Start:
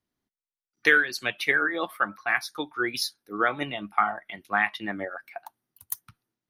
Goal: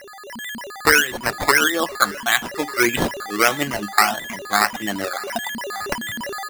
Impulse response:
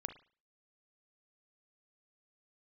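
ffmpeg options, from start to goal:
-af "highshelf=f=9800:g=-10.5,aeval=exprs='val(0)+0.0126*sin(2*PI*13000*n/s)':c=same,acrusher=samples=12:mix=1:aa=0.000001:lfo=1:lforange=7.2:lforate=1.6,dynaudnorm=f=240:g=3:m=4.47,aecho=1:1:1197:0.0708,volume=0.891"

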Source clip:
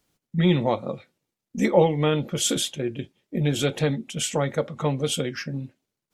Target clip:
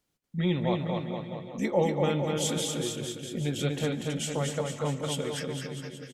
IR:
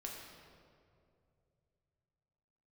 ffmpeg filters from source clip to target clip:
-filter_complex "[0:a]aecho=1:1:240|456|650.4|825.4|982.8:0.631|0.398|0.251|0.158|0.1,asplit=2[s0][s1];[1:a]atrim=start_sample=2205,adelay=144[s2];[s1][s2]afir=irnorm=-1:irlink=0,volume=0.211[s3];[s0][s3]amix=inputs=2:normalize=0,volume=0.422"

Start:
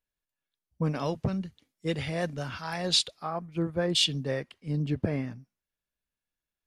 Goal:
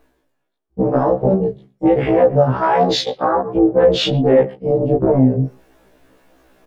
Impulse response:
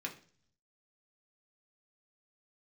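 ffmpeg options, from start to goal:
-filter_complex "[0:a]areverse,acompressor=mode=upward:threshold=0.0178:ratio=2.5,areverse,asoftclip=type=hard:threshold=0.119,afwtdn=0.0158,highshelf=f=2100:g=-9.5,asplit=2[s0][s1];[s1]adelay=120,highpass=300,lowpass=3400,asoftclip=type=hard:threshold=0.075,volume=0.0631[s2];[s0][s2]amix=inputs=2:normalize=0,flanger=delay=18:depth=5.3:speed=1.4,bandreject=f=50:t=h:w=6,bandreject=f=100:t=h:w=6,bandreject=f=150:t=h:w=6,bandreject=f=200:t=h:w=6,tremolo=f=280:d=0.667,acompressor=threshold=0.00355:ratio=2.5,equalizer=f=540:t=o:w=2.6:g=12,alimiter=level_in=31.6:limit=0.891:release=50:level=0:latency=1,afftfilt=real='re*1.73*eq(mod(b,3),0)':imag='im*1.73*eq(mod(b,3),0)':win_size=2048:overlap=0.75"

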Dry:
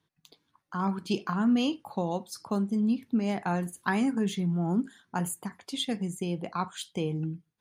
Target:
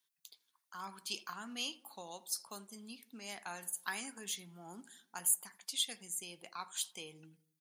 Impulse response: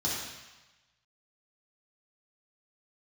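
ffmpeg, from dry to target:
-filter_complex "[0:a]aderivative,asplit=2[s0][s1];[s1]adelay=83,lowpass=f=1500:p=1,volume=0.126,asplit=2[s2][s3];[s3]adelay=83,lowpass=f=1500:p=1,volume=0.54,asplit=2[s4][s5];[s5]adelay=83,lowpass=f=1500:p=1,volume=0.54,asplit=2[s6][s7];[s7]adelay=83,lowpass=f=1500:p=1,volume=0.54,asplit=2[s8][s9];[s9]adelay=83,lowpass=f=1500:p=1,volume=0.54[s10];[s2][s4][s6][s8][s10]amix=inputs=5:normalize=0[s11];[s0][s11]amix=inputs=2:normalize=0,volume=1.58"

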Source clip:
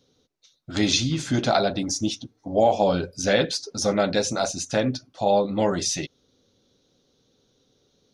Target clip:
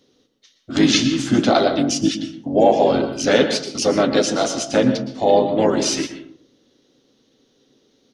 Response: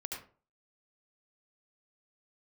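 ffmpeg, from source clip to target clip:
-filter_complex "[0:a]lowshelf=f=210:t=q:w=3:g=-8,asplit=3[s0][s1][s2];[s1]asetrate=22050,aresample=44100,atempo=2,volume=0.282[s3];[s2]asetrate=37084,aresample=44100,atempo=1.18921,volume=0.501[s4];[s0][s3][s4]amix=inputs=3:normalize=0,asplit=2[s5][s6];[1:a]atrim=start_sample=2205,asetrate=26901,aresample=44100[s7];[s6][s7]afir=irnorm=-1:irlink=0,volume=0.422[s8];[s5][s8]amix=inputs=2:normalize=0"

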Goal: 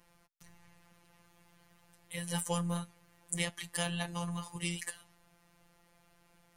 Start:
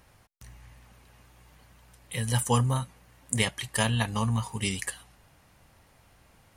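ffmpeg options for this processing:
-filter_complex "[0:a]acrossover=split=260|740|1800[s0][s1][s2][s3];[s2]asoftclip=type=hard:threshold=0.0133[s4];[s0][s1][s4][s3]amix=inputs=4:normalize=0,afftfilt=real='hypot(re,im)*cos(PI*b)':imag='0':win_size=1024:overlap=0.75,volume=0.708"

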